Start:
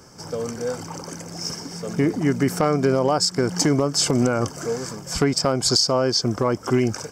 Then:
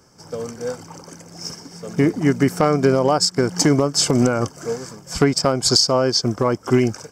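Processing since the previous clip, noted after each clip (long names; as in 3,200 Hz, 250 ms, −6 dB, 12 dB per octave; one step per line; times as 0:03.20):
expander for the loud parts 1.5 to 1, over −37 dBFS
level +4.5 dB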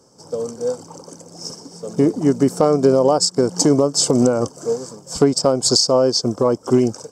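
octave-band graphic EQ 125/250/500/1,000/2,000/4,000/8,000 Hz +4/+7/+11/+7/−8/+6/+11 dB
level −8.5 dB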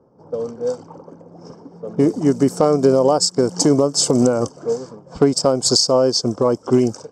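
low-pass that shuts in the quiet parts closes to 1,000 Hz, open at −13.5 dBFS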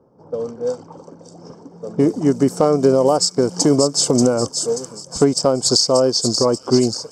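delay with a high-pass on its return 584 ms, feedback 48%, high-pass 4,400 Hz, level −4 dB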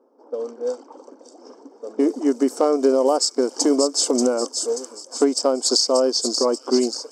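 linear-phase brick-wall high-pass 230 Hz
level −3 dB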